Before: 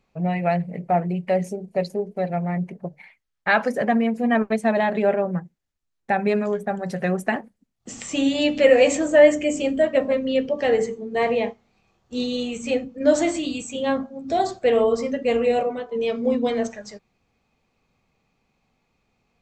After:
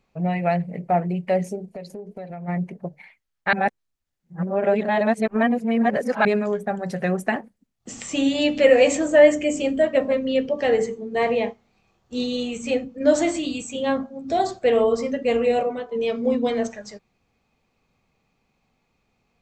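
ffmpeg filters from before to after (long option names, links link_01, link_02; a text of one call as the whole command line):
ffmpeg -i in.wav -filter_complex "[0:a]asplit=3[link_01][link_02][link_03];[link_01]afade=type=out:start_time=1.74:duration=0.02[link_04];[link_02]acompressor=threshold=-32dB:ratio=6:attack=3.2:release=140:knee=1:detection=peak,afade=type=in:start_time=1.74:duration=0.02,afade=type=out:start_time=2.47:duration=0.02[link_05];[link_03]afade=type=in:start_time=2.47:duration=0.02[link_06];[link_04][link_05][link_06]amix=inputs=3:normalize=0,asplit=3[link_07][link_08][link_09];[link_07]atrim=end=3.532[link_10];[link_08]atrim=start=3.528:end=6.252,asetpts=PTS-STARTPTS,areverse[link_11];[link_09]atrim=start=6.248[link_12];[link_10][link_11]acrossfade=duration=0.004:curve1=hsin:curve2=hsin[link_13];[link_13][link_12]acrossfade=duration=0.004:curve1=hsin:curve2=hsin" out.wav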